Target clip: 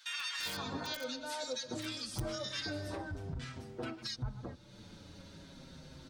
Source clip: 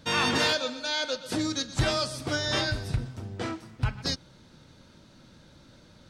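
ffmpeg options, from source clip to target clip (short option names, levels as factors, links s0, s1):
-filter_complex "[0:a]acrossover=split=1300[s0][s1];[s0]adelay=390[s2];[s2][s1]amix=inputs=2:normalize=0,aeval=exprs='(mod(6.68*val(0)+1,2)-1)/6.68':c=same,alimiter=limit=0.0794:level=0:latency=1:release=19,acompressor=threshold=0.00447:ratio=2,asplit=2[s3][s4];[s4]adelay=6.5,afreqshift=-0.43[s5];[s3][s5]amix=inputs=2:normalize=1,volume=1.78"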